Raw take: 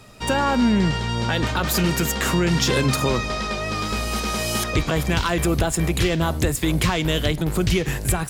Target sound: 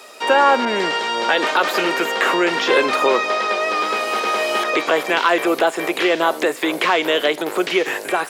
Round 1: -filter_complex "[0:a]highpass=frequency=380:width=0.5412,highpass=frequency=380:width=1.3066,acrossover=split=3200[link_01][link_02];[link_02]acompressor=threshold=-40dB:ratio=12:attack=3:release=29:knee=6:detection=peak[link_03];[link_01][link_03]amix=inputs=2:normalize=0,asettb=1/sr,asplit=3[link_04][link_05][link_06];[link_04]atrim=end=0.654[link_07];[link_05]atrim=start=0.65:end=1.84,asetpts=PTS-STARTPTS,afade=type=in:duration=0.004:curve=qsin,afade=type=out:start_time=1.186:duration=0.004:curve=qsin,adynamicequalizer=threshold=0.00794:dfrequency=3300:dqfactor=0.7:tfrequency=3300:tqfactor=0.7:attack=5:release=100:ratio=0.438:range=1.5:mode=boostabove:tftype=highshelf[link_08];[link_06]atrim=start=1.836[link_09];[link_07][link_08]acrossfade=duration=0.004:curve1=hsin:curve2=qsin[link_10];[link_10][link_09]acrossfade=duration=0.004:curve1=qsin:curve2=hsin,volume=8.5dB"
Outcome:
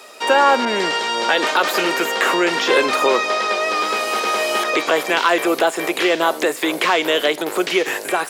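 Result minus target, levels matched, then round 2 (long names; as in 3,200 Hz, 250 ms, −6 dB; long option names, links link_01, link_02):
downward compressor: peak gain reduction −5.5 dB
-filter_complex "[0:a]highpass=frequency=380:width=0.5412,highpass=frequency=380:width=1.3066,acrossover=split=3200[link_01][link_02];[link_02]acompressor=threshold=-46dB:ratio=12:attack=3:release=29:knee=6:detection=peak[link_03];[link_01][link_03]amix=inputs=2:normalize=0,asettb=1/sr,asplit=3[link_04][link_05][link_06];[link_04]atrim=end=0.654[link_07];[link_05]atrim=start=0.65:end=1.84,asetpts=PTS-STARTPTS,afade=type=in:duration=0.004:curve=qsin,afade=type=out:start_time=1.186:duration=0.004:curve=qsin,adynamicequalizer=threshold=0.00794:dfrequency=3300:dqfactor=0.7:tfrequency=3300:tqfactor=0.7:attack=5:release=100:ratio=0.438:range=1.5:mode=boostabove:tftype=highshelf[link_08];[link_06]atrim=start=1.836[link_09];[link_07][link_08]acrossfade=duration=0.004:curve1=hsin:curve2=qsin[link_10];[link_10][link_09]acrossfade=duration=0.004:curve1=qsin:curve2=hsin,volume=8.5dB"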